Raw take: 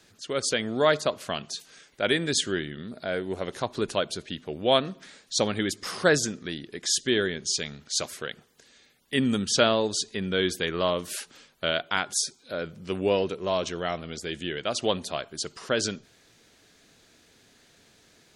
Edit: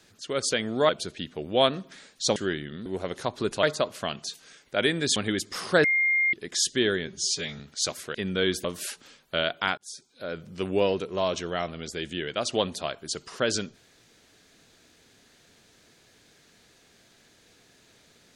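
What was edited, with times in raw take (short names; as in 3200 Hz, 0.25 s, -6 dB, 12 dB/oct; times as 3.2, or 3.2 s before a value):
0.89–2.42 swap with 4–5.47
2.92–3.23 cut
6.15–6.64 bleep 2120 Hz -20 dBFS
7.38–7.73 stretch 1.5×
8.28–10.11 cut
10.61–10.94 cut
12.07–12.75 fade in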